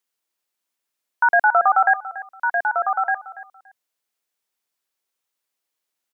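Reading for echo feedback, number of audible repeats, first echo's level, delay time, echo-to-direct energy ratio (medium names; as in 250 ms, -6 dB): 23%, 2, -16.0 dB, 285 ms, -16.0 dB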